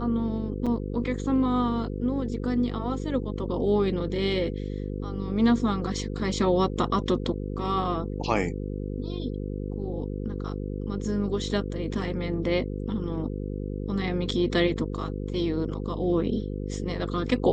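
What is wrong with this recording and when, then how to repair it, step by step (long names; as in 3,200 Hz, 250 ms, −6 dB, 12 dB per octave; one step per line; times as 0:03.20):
mains buzz 50 Hz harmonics 10 −32 dBFS
0:00.66–0:00.67: drop-out 5.9 ms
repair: hum removal 50 Hz, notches 10
repair the gap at 0:00.66, 5.9 ms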